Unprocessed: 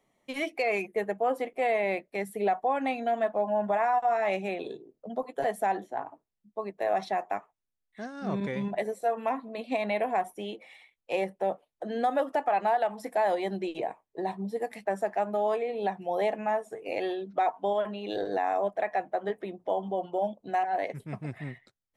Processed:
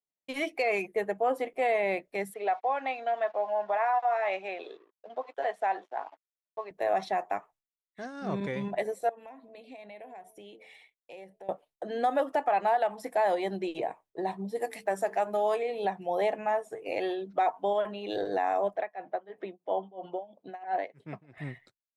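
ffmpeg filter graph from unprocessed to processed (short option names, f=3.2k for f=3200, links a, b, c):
-filter_complex "[0:a]asettb=1/sr,asplit=3[a][b][c];[a]atrim=end=2.344[d];[b]atrim=start=2.34:end=6.71,asetpts=PTS-STARTPTS,afade=t=in:d=0.004:c=qsin,afade=t=out:st=4.366:d=0.004:c=qsin,aeval=exprs='sgn(val(0))*max(abs(val(0))-0.00119,0)':c=same,highpass=540,lowpass=4k[e];[c]atrim=start=6.706[f];[d][e]acrossfade=d=0.004:c1=hsin:c2=qsin[g];[g][f]acrossfade=d=0.004:c1=qsin:c2=hsin,asettb=1/sr,asplit=3[h][i][j];[h]atrim=end=9.094[k];[i]atrim=start=9.09:end=11.49,asetpts=PTS-STARTPTS,afade=t=in:d=0.004:c=qsin,afade=t=out:st=2.396:d=0.004:c=qsin,bandreject=f=218.8:t=h:w=4,bandreject=f=437.6:t=h:w=4,bandreject=f=656.4:t=h:w=4,acompressor=threshold=-48dB:ratio=3:attack=3.2:release=140:knee=1:detection=peak,equalizer=f=1.2k:t=o:w=0.56:g=-7.5[l];[j]atrim=start=11.486[m];[k][l]acrossfade=d=0.004:c1=hsin:c2=qsin[n];[n][m]acrossfade=d=0.004:c1=qsin:c2=hsin,asettb=1/sr,asplit=3[o][p][q];[o]atrim=end=14.554[r];[p]atrim=start=14.55:end=15.85,asetpts=PTS-STARTPTS,afade=t=in:d=0.004:c=qsin,afade=t=out:st=1.296:d=0.004:c=qsin,highshelf=f=4k:g=8,bandreject=f=50:t=h:w=6,bandreject=f=100:t=h:w=6,bandreject=f=150:t=h:w=6,bandreject=f=200:t=h:w=6,bandreject=f=250:t=h:w=6,bandreject=f=300:t=h:w=6,bandreject=f=350:t=h:w=6,bandreject=f=400:t=h:w=6,bandreject=f=450:t=h:w=6[s];[q]atrim=start=15.846[t];[r][s]acrossfade=d=0.004:c1=hsin:c2=qsin[u];[u][t]acrossfade=d=0.004:c1=qsin:c2=hsin,asettb=1/sr,asplit=3[v][w][x];[v]atrim=end=18.764[y];[w]atrim=start=18.76:end=21.38,asetpts=PTS-STARTPTS,afade=t=in:d=0.004:c=qsin,afade=t=out:st=2.616:d=0.004:c=qsin,tremolo=f=3:d=0.93,highpass=170,lowpass=4.5k[z];[x]atrim=start=21.376[aa];[y][z]acrossfade=d=0.004:c1=hsin:c2=qsin[ab];[ab][aa]acrossfade=d=0.004:c1=qsin:c2=hsin,agate=range=-33dB:threshold=-54dB:ratio=3:detection=peak,equalizer=f=220:w=7.2:g=-8"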